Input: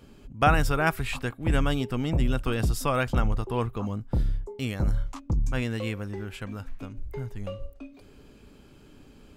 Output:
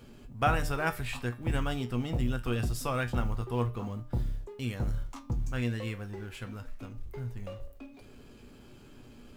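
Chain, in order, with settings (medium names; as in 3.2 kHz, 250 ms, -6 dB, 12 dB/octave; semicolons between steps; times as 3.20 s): companding laws mixed up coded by mu; feedback comb 120 Hz, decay 0.21 s, harmonics all, mix 70%; de-hum 150.5 Hz, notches 39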